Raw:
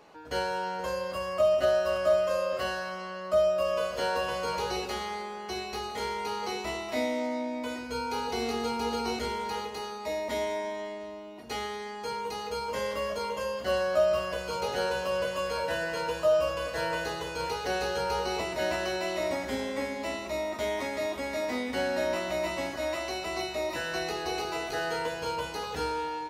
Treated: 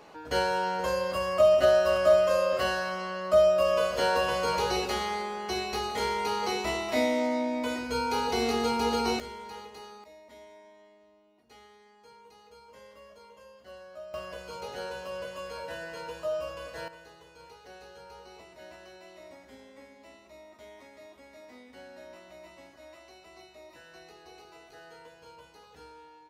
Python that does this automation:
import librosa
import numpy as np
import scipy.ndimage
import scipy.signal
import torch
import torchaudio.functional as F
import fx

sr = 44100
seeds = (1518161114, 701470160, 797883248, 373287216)

y = fx.gain(x, sr, db=fx.steps((0.0, 3.5), (9.2, -9.0), (10.04, -20.0), (14.14, -8.0), (16.88, -19.0)))